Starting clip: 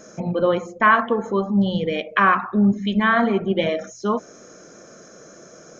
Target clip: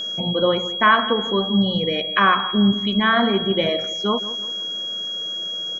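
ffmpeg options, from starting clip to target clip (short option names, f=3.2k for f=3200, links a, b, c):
-filter_complex "[0:a]asplit=2[a][b];[b]adelay=168,lowpass=f=3k:p=1,volume=-14.5dB,asplit=2[c][d];[d]adelay=168,lowpass=f=3k:p=1,volume=0.38,asplit=2[e][f];[f]adelay=168,lowpass=f=3k:p=1,volume=0.38,asplit=2[g][h];[h]adelay=168,lowpass=f=3k:p=1,volume=0.38[i];[a][c][e][g][i]amix=inputs=5:normalize=0,aeval=exprs='val(0)+0.0562*sin(2*PI*3300*n/s)':c=same"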